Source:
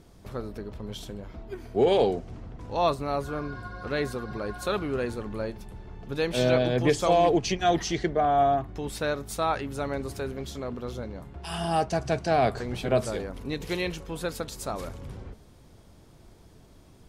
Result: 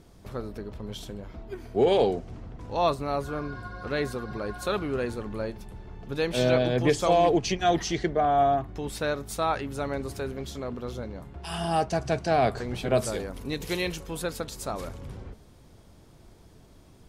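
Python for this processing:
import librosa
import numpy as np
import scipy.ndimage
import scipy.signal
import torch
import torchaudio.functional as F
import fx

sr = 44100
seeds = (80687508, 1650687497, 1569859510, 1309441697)

y = fx.high_shelf(x, sr, hz=6100.0, db=8.5, at=(12.93, 14.22))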